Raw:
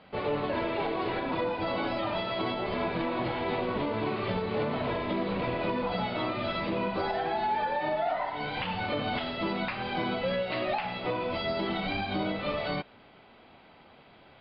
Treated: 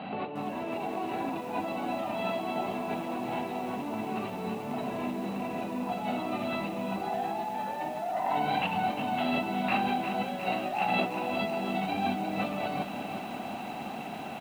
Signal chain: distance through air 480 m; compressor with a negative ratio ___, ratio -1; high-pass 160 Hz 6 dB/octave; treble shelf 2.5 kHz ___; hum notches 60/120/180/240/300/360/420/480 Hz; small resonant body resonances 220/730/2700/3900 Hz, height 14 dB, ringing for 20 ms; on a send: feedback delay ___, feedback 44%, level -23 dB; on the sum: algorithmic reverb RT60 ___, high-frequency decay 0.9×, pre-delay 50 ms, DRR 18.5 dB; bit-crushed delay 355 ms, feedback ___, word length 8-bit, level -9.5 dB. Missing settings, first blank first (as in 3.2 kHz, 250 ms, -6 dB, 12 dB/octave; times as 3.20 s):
-42 dBFS, +11.5 dB, 137 ms, 2.6 s, 80%